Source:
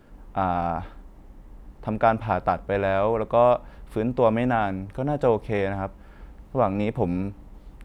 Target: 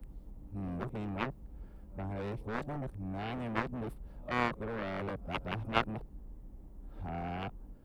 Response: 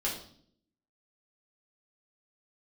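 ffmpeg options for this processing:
-filter_complex "[0:a]areverse,tiltshelf=f=920:g=9.5,acrossover=split=130|700|1700[a][b][c][d];[b]asoftclip=type=tanh:threshold=-22.5dB[e];[d]aemphasis=mode=production:type=75kf[f];[a][e][c][f]amix=inputs=4:normalize=0,aeval=exprs='0.447*(cos(1*acos(clip(val(0)/0.447,-1,1)))-cos(1*PI/2))+0.2*(cos(3*acos(clip(val(0)/0.447,-1,1)))-cos(3*PI/2))':c=same,volume=-3.5dB"

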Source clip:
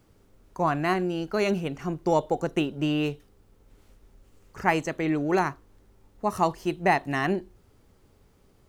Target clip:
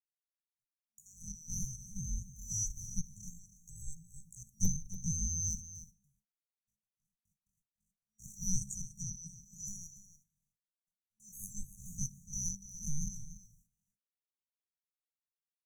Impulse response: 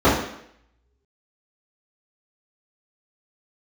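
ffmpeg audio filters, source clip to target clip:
-filter_complex "[0:a]afftfilt=real='real(if(lt(b,272),68*(eq(floor(b/68),0)*2+eq(floor(b/68),1)*3+eq(floor(b/68),2)*0+eq(floor(b/68),3)*1)+mod(b,68),b),0)':imag='imag(if(lt(b,272),68*(eq(floor(b/68),0)*2+eq(floor(b/68),1)*3+eq(floor(b/68),2)*0+eq(floor(b/68),3)*1)+mod(b,68),b),0)':win_size=2048:overlap=0.75,bass=f=250:g=8,treble=f=4k:g=-8,agate=range=-58dB:threshold=-51dB:ratio=16:detection=peak,acrossover=split=330|1800[a][b][c];[a]acontrast=55[d];[d][b][c]amix=inputs=3:normalize=0,equalizer=f=69:w=1:g=-13.5,asplit=2[e][f];[f]acompressor=threshold=-36dB:ratio=10,volume=-1dB[g];[e][g]amix=inputs=2:normalize=0,afftfilt=real='re*(1-between(b*sr/4096,200,5300))':imag='im*(1-between(b*sr/4096,200,5300))':win_size=4096:overlap=0.75,atempo=0.51,aeval=exprs='0.0708*(abs(mod(val(0)/0.0708+3,4)-2)-1)':c=same,aecho=1:1:315:0.211,asetrate=48000,aresample=44100,volume=4.5dB"

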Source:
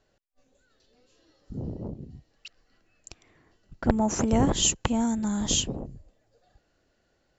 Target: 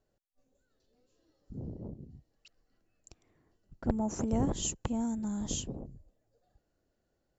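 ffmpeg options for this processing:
-af "equalizer=f=2.6k:t=o:w=2.8:g=-9,volume=-6.5dB"

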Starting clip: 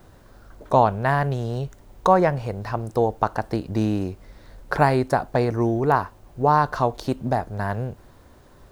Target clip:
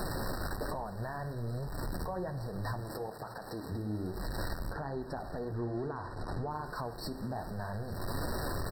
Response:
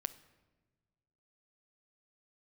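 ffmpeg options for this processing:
-filter_complex "[0:a]aeval=exprs='val(0)+0.5*0.0501*sgn(val(0))':c=same,asettb=1/sr,asplit=3[a][b][c];[a]atrim=end=2.804[d];[b]atrim=start=2.8:end=3.72,asetpts=PTS-STARTPTS,afade=t=in:d=0.004:c=qsin,afade=t=out:st=0.916:d=0.004:c=qsin,highpass=f=340:p=1[e];[c]atrim=start=3.716[f];[d][e]acrossfade=d=0.004:c1=hsin:c2=qsin[g];[g][f]acrossfade=d=0.004:c1=qsin:c2=hsin,acompressor=threshold=-30dB:ratio=12,alimiter=level_in=3.5dB:limit=-24dB:level=0:latency=1:release=31,volume=-3.5dB,flanger=delay=4.5:depth=8.4:regen=-35:speed=1.2:shape=triangular,asettb=1/sr,asplit=3[h][i][j];[h]atrim=end=4.734[k];[i]atrim=start=4.73:end=6.51,asetpts=PTS-STARTPTS,afade=t=in:d=0.004:c=qsin,afade=t=out:st=1.776:d=0.004:c=qsin,adynamicsmooth=sensitivity=6:basefreq=4.6k[l];[j]atrim=start=6.506[m];[k][l]acrossfade=d=0.004:c1=hsin:c2=qsin[n];[n][m]acrossfade=d=0.004:c1=qsin:c2=hsin,aecho=1:1:858:0.126[o];[1:a]atrim=start_sample=2205,asetrate=28224,aresample=44100[p];[o][p]afir=irnorm=-1:irlink=0,afftfilt=real='re*eq(mod(floor(b*sr/1024/1900),2),0)':imag='im*eq(mod(floor(b*sr/1024/1900),2),0)':win_size=1024:overlap=0.75"

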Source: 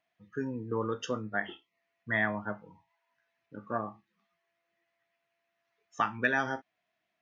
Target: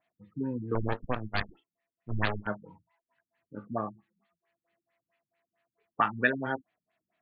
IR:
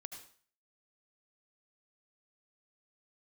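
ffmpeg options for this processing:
-filter_complex "[0:a]asettb=1/sr,asplit=3[a][b][c];[a]atrim=end=0.754[d];[b]atrim=start=0.75:end=2.47,asetpts=PTS-STARTPTS,afade=t=in:d=0.004:c=qsin,afade=t=out:st=1.716:d=0.004:c=qsin,aeval=exprs='0.168*(cos(1*acos(clip(val(0)/0.168,-1,1)))-cos(1*PI/2))+0.0376*(cos(3*acos(clip(val(0)/0.168,-1,1)))-cos(3*PI/2))+0.075*(cos(4*acos(clip(val(0)/0.168,-1,1)))-cos(4*PI/2))+0.00376*(cos(5*acos(clip(val(0)/0.168,-1,1)))-cos(5*PI/2))+0.0841*(cos(6*acos(clip(val(0)/0.168,-1,1)))-cos(6*PI/2))':c=same[e];[c]atrim=start=2.466[f];[d][e]acrossfade=d=0.004:c1=hsin:c2=qsin[g];[g][f]acrossfade=d=0.004:c1=qsin:c2=hsin,afftfilt=real='re*lt(b*sr/1024,280*pow(4900/280,0.5+0.5*sin(2*PI*4.5*pts/sr)))':imag='im*lt(b*sr/1024,280*pow(4900/280,0.5+0.5*sin(2*PI*4.5*pts/sr)))':win_size=1024:overlap=0.75,volume=3dB"

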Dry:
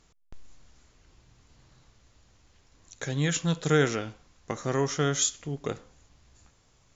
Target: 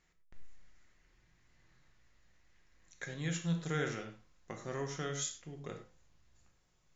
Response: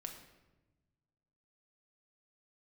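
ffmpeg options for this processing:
-filter_complex "[0:a]asetnsamples=n=441:p=0,asendcmd='3.05 equalizer g 3.5',equalizer=f=1.9k:w=2.2:g=12[a];[1:a]atrim=start_sample=2205,afade=t=out:st=0.17:d=0.01,atrim=end_sample=7938[b];[a][b]afir=irnorm=-1:irlink=0,volume=-8.5dB"

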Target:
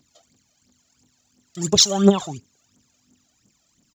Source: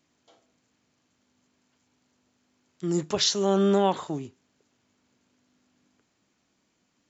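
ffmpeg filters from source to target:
-af "bass=f=250:g=4,treble=f=4k:g=13,aphaser=in_gain=1:out_gain=1:delay=1.7:decay=0.76:speed=1.6:type=triangular,atempo=1.8,volume=-1dB"

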